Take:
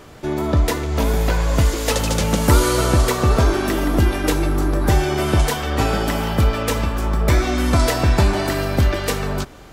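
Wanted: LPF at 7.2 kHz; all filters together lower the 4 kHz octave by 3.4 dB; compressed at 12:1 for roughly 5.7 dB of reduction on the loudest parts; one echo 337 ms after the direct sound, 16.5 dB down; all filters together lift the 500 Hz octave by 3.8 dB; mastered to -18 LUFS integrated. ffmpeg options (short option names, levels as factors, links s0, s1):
-af "lowpass=7200,equalizer=f=500:t=o:g=5,equalizer=f=4000:t=o:g=-4,acompressor=threshold=0.178:ratio=12,aecho=1:1:337:0.15,volume=1.41"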